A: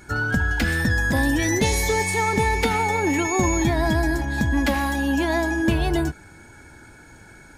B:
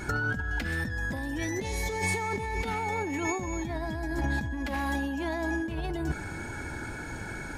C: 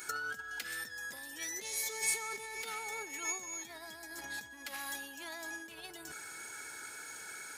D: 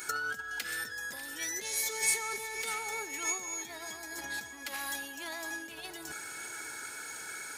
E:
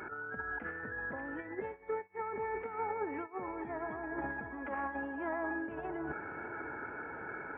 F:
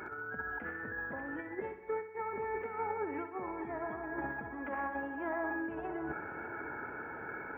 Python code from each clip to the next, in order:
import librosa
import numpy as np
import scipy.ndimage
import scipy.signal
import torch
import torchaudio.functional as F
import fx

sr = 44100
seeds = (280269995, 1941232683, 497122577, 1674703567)

y1 = fx.high_shelf(x, sr, hz=4700.0, db=-6.0)
y1 = fx.over_compress(y1, sr, threshold_db=-31.0, ratio=-1.0)
y2 = np.diff(y1, prepend=0.0)
y2 = fx.small_body(y2, sr, hz=(440.0, 1300.0), ring_ms=30, db=8)
y2 = y2 * librosa.db_to_amplitude(4.0)
y3 = fx.echo_feedback(y2, sr, ms=595, feedback_pct=48, wet_db=-14.0)
y3 = y3 * librosa.db_to_amplitude(4.0)
y4 = fx.over_compress(y3, sr, threshold_db=-38.0, ratio=-0.5)
y4 = scipy.ndimage.gaussian_filter1d(y4, 6.5, mode='constant')
y4 = y4 * librosa.db_to_amplitude(8.0)
y5 = fx.echo_feedback(y4, sr, ms=64, feedback_pct=56, wet_db=-11.5)
y5 = np.interp(np.arange(len(y5)), np.arange(len(y5))[::2], y5[::2])